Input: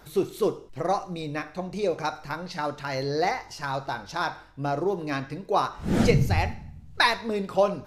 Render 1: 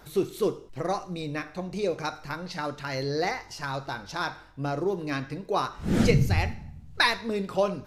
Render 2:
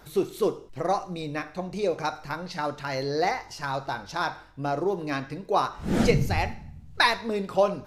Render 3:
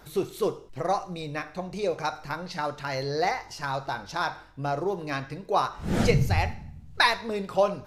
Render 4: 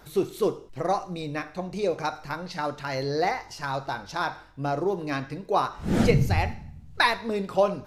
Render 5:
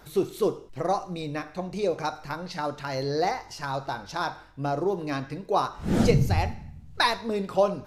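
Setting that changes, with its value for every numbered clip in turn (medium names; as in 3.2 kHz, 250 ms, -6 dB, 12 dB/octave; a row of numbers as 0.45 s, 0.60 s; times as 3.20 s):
dynamic bell, frequency: 770 Hz, 100 Hz, 270 Hz, 5.8 kHz, 2.1 kHz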